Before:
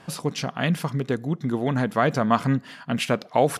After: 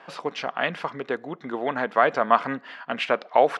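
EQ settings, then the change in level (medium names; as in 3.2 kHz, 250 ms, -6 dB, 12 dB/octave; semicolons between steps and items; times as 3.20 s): band-pass 520–2600 Hz; +4.0 dB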